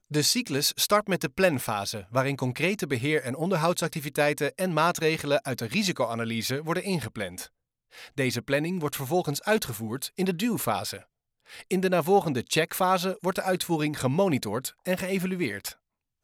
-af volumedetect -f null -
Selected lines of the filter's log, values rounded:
mean_volume: -27.4 dB
max_volume: -8.0 dB